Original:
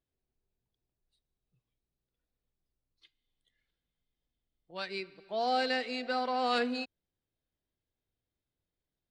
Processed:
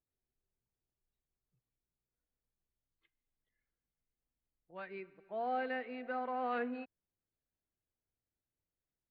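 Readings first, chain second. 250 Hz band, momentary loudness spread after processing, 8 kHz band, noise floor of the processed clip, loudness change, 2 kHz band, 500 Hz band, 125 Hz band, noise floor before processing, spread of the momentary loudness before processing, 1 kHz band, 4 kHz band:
−6.0 dB, 13 LU, below −20 dB, below −85 dBFS, −7.0 dB, −7.0 dB, −6.0 dB, can't be measured, below −85 dBFS, 12 LU, −6.0 dB, −21.5 dB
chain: low-pass filter 2,200 Hz 24 dB per octave
level −6 dB

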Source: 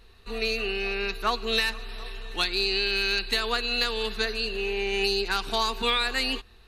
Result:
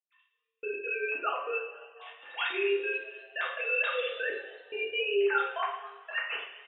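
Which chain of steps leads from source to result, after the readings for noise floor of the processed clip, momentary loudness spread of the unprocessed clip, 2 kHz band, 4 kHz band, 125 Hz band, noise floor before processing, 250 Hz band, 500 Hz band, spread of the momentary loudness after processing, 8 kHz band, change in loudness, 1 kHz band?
−81 dBFS, 5 LU, −3.0 dB, −14.0 dB, can't be measured, −52 dBFS, −8.5 dB, −2.0 dB, 14 LU, below −40 dB, −5.5 dB, −4.0 dB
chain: three sine waves on the formant tracks
brickwall limiter −20.5 dBFS, peak gain reduction 8.5 dB
gate pattern ".x....x.xxxxx" 143 BPM −60 dB
on a send: echo with shifted repeats 243 ms, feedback 51%, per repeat +130 Hz, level −23 dB
on the sum: coupled-rooms reverb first 0.58 s, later 1.9 s, from −16 dB, DRR −5 dB
level −7 dB

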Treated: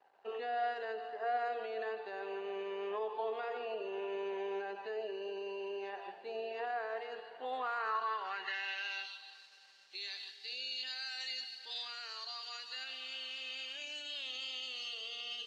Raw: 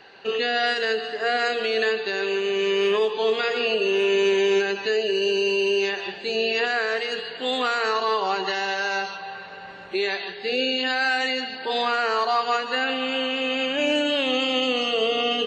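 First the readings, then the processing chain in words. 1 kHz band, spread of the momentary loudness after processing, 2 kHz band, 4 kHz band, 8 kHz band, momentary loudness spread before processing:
−13.5 dB, 6 LU, −18.5 dB, −16.0 dB, can't be measured, 6 LU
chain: dead-zone distortion −49.5 dBFS
brickwall limiter −16.5 dBFS, peak gain reduction 3 dB
band-pass filter sweep 790 Hz → 4,900 Hz, 0:07.49–0:09.47
level −5 dB

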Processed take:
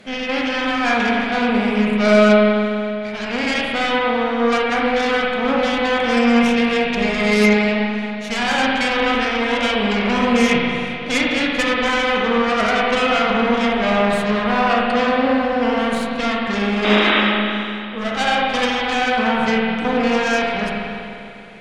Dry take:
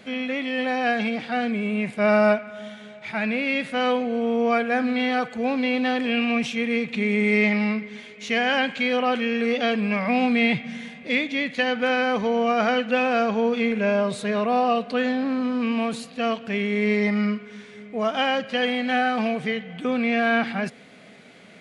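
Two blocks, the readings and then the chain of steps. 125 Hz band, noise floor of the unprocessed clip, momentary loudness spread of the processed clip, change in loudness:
+5.5 dB, −45 dBFS, 8 LU, +5.5 dB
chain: harmonic generator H 6 −11 dB, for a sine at −8.5 dBFS
sound drawn into the spectrogram noise, 0:16.84–0:17.21, 220–3,900 Hz −18 dBFS
in parallel at −1 dB: speech leveller 0.5 s
on the sum: spring reverb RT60 2.6 s, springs 38/49 ms, chirp 55 ms, DRR −3.5 dB
level −6 dB

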